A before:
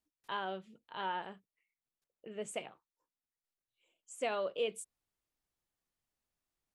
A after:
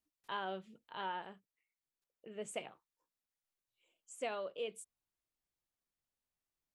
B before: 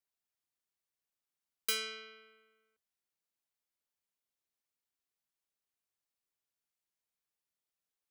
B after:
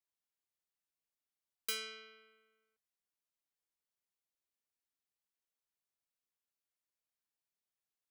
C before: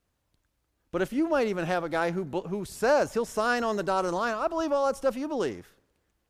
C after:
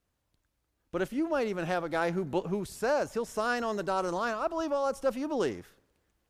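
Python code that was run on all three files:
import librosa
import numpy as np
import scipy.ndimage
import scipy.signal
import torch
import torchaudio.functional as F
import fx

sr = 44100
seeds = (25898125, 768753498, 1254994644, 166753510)

y = fx.rider(x, sr, range_db=5, speed_s=0.5)
y = y * librosa.db_to_amplitude(-3.0)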